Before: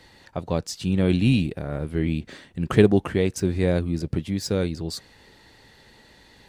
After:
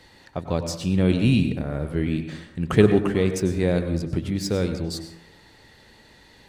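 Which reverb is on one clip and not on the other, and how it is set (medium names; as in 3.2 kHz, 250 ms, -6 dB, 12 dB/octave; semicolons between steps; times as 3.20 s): plate-style reverb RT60 0.74 s, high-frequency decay 0.45×, pre-delay 85 ms, DRR 7.5 dB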